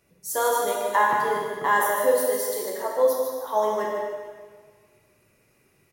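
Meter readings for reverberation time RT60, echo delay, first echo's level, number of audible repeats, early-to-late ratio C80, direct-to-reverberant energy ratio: 1.6 s, 150 ms, −6.5 dB, 1, 1.0 dB, −3.5 dB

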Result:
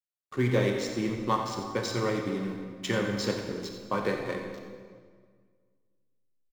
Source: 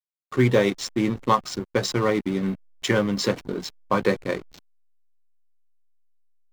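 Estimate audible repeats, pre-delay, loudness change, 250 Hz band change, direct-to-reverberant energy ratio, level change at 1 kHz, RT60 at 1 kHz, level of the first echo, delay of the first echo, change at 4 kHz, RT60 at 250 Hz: 1, 26 ms, −6.0 dB, −6.5 dB, 2.0 dB, −6.5 dB, 1.7 s, −11.5 dB, 89 ms, −6.0 dB, 2.0 s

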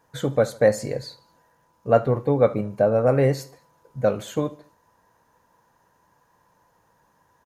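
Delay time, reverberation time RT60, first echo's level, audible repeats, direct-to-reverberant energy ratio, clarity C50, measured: 74 ms, no reverb audible, −20.5 dB, 3, no reverb audible, no reverb audible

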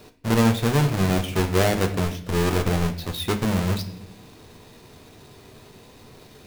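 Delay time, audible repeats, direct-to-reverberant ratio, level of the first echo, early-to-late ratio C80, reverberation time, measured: no echo audible, no echo audible, 6.0 dB, no echo audible, 14.5 dB, 0.70 s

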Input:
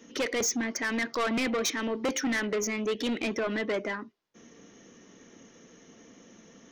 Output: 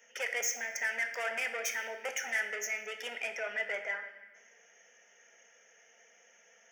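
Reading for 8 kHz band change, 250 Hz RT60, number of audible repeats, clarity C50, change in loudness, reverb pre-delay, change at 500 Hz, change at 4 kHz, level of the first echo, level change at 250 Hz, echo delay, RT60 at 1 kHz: −4.0 dB, 2.1 s, no echo audible, 8.5 dB, −4.5 dB, 4 ms, −10.0 dB, −7.5 dB, no echo audible, −30.5 dB, no echo audible, 1.1 s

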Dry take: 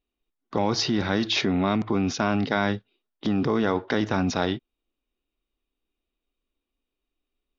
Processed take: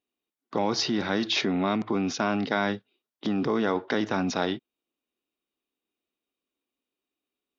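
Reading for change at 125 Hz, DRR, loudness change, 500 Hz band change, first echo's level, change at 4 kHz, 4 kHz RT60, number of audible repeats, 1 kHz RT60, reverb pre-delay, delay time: −6.0 dB, no reverb audible, −2.0 dB, −1.5 dB, no echo audible, −1.5 dB, no reverb audible, no echo audible, no reverb audible, no reverb audible, no echo audible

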